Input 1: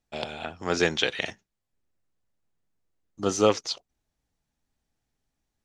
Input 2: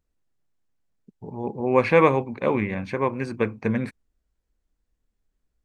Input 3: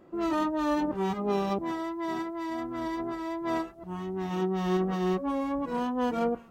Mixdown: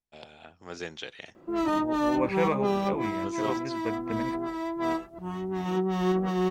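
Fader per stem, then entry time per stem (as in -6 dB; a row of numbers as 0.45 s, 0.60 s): -14.0 dB, -10.5 dB, +1.5 dB; 0.00 s, 0.45 s, 1.35 s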